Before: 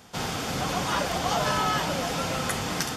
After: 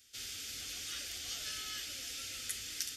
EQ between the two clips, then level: tilt shelf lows -7 dB, about 750 Hz; amplifier tone stack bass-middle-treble 6-0-2; static phaser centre 400 Hz, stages 4; +2.0 dB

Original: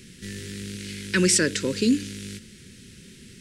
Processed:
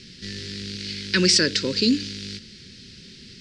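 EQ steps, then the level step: resonant low-pass 4.7 kHz, resonance Q 3.9; 0.0 dB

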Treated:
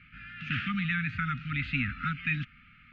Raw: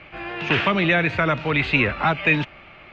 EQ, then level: brick-wall FIR band-stop 280–1200 Hz; low-pass 1.7 kHz 6 dB/octave; -7.0 dB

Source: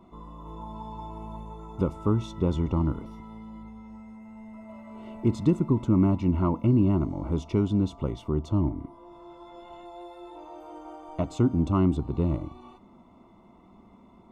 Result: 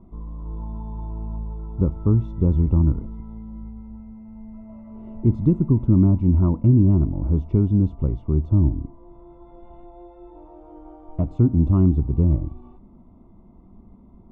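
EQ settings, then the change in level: tilt EQ -4.5 dB/octave; treble shelf 3.4 kHz -9.5 dB; -5.5 dB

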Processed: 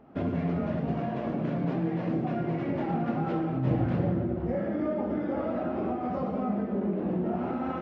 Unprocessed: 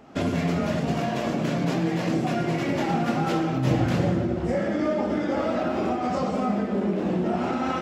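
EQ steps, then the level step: tape spacing loss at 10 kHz 42 dB; -3.0 dB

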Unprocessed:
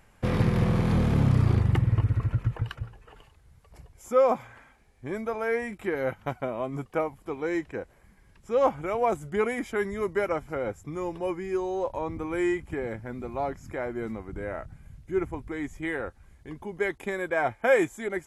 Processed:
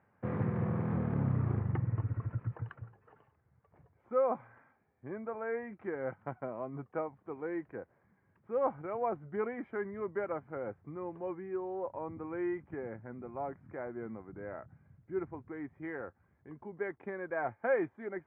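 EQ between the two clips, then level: high-pass 95 Hz 24 dB/octave; low-pass 1.8 kHz 24 dB/octave; -8.5 dB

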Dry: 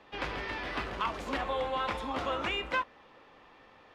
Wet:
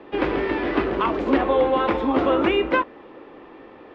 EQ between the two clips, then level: low-pass 3 kHz 12 dB/octave; peaking EQ 340 Hz +15 dB 1.2 oct; +7.5 dB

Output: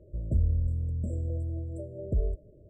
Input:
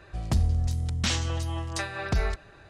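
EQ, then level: dynamic bell 190 Hz, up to -5 dB, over -39 dBFS, Q 0.78; brick-wall FIR band-stop 650–7400 Hz; distance through air 200 m; 0.0 dB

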